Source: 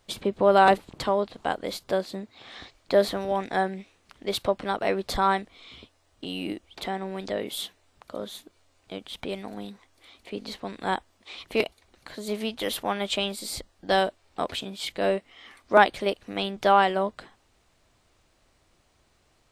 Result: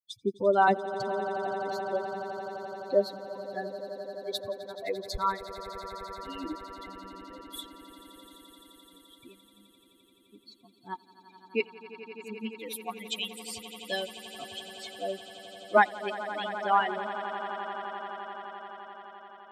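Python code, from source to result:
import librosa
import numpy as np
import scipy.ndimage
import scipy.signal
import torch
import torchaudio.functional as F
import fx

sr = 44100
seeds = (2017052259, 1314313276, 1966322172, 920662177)

y = fx.bin_expand(x, sr, power=3.0)
y = fx.echo_swell(y, sr, ms=86, loudest=8, wet_db=-17)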